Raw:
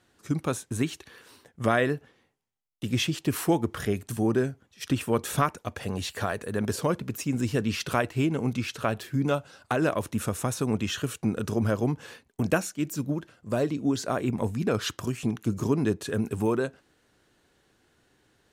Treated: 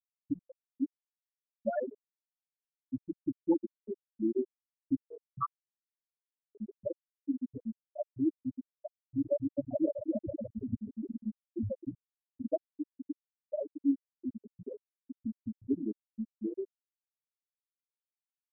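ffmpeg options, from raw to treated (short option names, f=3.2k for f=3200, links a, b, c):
-filter_complex "[0:a]asettb=1/sr,asplit=3[a][b][c];[a]atrim=end=8.634[d];[b]atrim=start=8.63:end=11.26,asetpts=PTS-STARTPTS,afade=t=in:d=0.004:c=qsin,afade=t=out:st=2.626:d=0.004:c=qsin,aecho=1:1:260|416|509.6|565.8|599.5|619.7:0.794|0.631|0.501|0.398|0.316|0.251,atrim=end_sample=115983[e];[c]atrim=start=11.256[f];[d][e]acrossfade=d=0.004:c1=hsin:c2=qsin[g];[g][f]acrossfade=d=0.004:c1=qsin:c2=hsin,bandreject=f=60:t=h:w=6,bandreject=f=120:t=h:w=6,bandreject=f=180:t=h:w=6,bandreject=f=240:t=h:w=6,bandreject=f=300:t=h:w=6,bandreject=f=360:t=h:w=6,bandreject=f=420:t=h:w=6,afftfilt=real='re*gte(hypot(re,im),0.447)':imag='im*gte(hypot(re,im),0.447)':win_size=1024:overlap=0.75,aecho=1:1:3.3:0.96,volume=-7dB"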